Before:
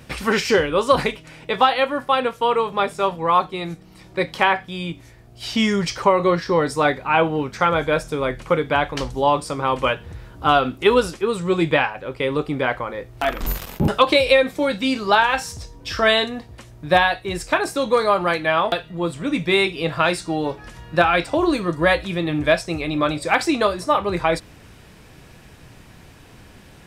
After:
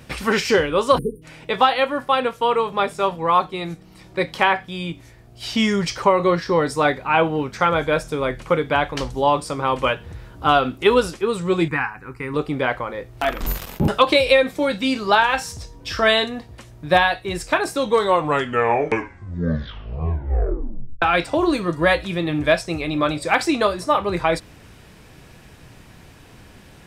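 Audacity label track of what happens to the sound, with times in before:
0.980000	1.220000	spectral selection erased 500–8800 Hz
11.680000	12.340000	static phaser centre 1.4 kHz, stages 4
17.790000	17.790000	tape stop 3.23 s

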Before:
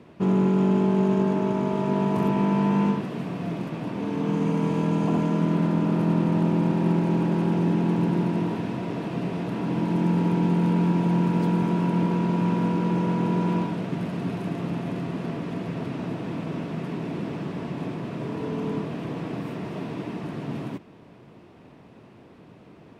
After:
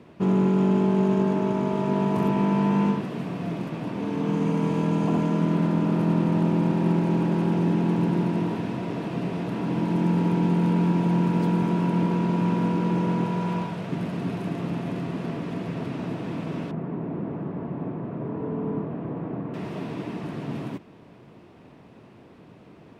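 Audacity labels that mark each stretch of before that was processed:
13.240000	13.890000	peaking EQ 280 Hz -9.5 dB
16.710000	19.540000	low-pass 1.2 kHz

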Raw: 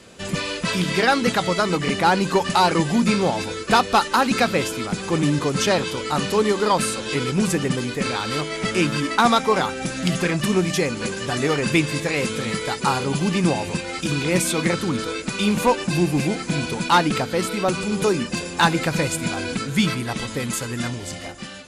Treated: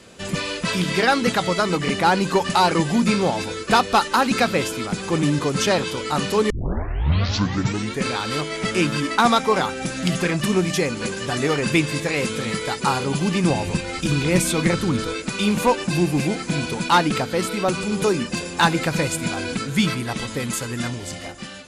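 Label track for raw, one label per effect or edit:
6.500000	6.500000	tape start 1.55 s
13.500000	15.140000	bass shelf 100 Hz +12 dB

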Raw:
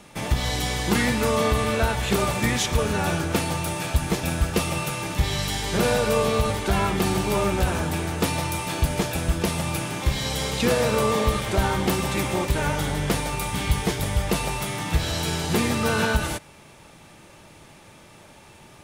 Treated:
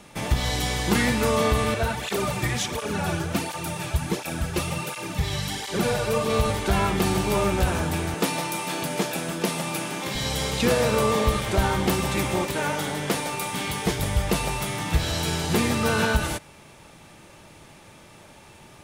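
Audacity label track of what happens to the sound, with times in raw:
1.740000	6.300000	cancelling through-zero flanger nulls at 1.4 Hz, depth 4.7 ms
8.140000	10.150000	high-pass 170 Hz 24 dB/octave
12.450000	13.860000	high-pass 190 Hz

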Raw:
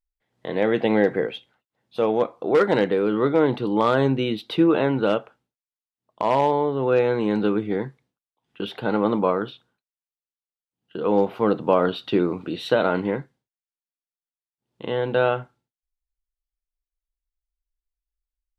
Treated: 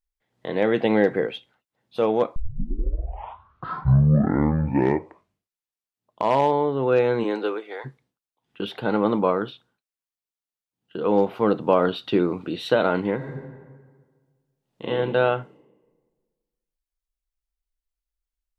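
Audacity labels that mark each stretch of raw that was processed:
2.360000	2.360000	tape start 3.86 s
7.230000	7.840000	high-pass 260 Hz -> 670 Hz 24 dB/octave
13.160000	14.880000	reverb throw, RT60 1.6 s, DRR -5 dB

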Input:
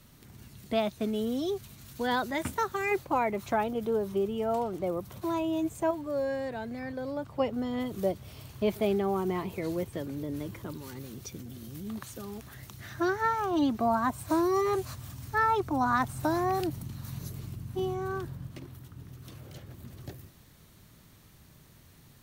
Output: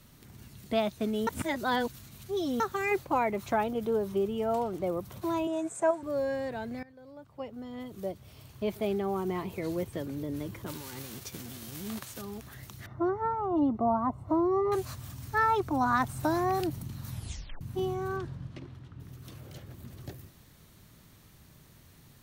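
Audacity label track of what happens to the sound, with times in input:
1.270000	2.600000	reverse
5.470000	6.030000	cabinet simulation 230–9900 Hz, peaks and dips at 270 Hz -9 dB, 670 Hz +4 dB, 1.5 kHz +6 dB, 3.1 kHz -7 dB, 4.5 kHz -6 dB, 8 kHz +10 dB
6.830000	9.930000	fade in, from -19.5 dB
10.660000	12.200000	formants flattened exponent 0.6
12.860000	14.720000	Savitzky-Golay filter over 65 samples
17.100000	17.100000	tape stop 0.51 s
18.160000	18.990000	low-pass 6.9 kHz -> 3.5 kHz

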